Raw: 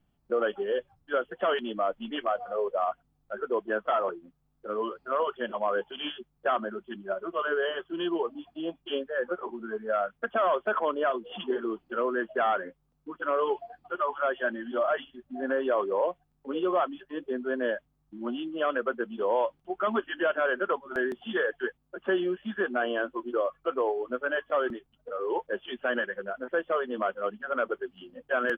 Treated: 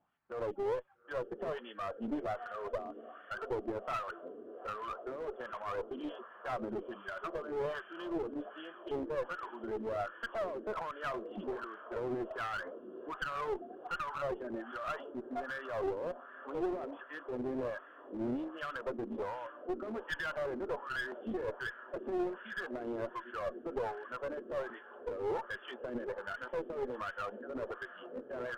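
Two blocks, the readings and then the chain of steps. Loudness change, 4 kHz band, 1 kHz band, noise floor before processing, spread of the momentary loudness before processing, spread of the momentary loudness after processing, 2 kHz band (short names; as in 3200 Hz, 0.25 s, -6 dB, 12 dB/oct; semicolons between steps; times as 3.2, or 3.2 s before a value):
-9.5 dB, n/a, -10.0 dB, -73 dBFS, 9 LU, 7 LU, -9.5 dB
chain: low shelf 200 Hz +3.5 dB; in parallel at -1 dB: compressor, threshold -36 dBFS, peak gain reduction 14 dB; on the sum: limiter -24 dBFS, peak gain reduction 10 dB; diffused feedback echo 0.866 s, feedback 71%, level -15 dB; LFO band-pass sine 1.3 Hz 290–1700 Hz; one-sided clip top -40 dBFS; gain +2 dB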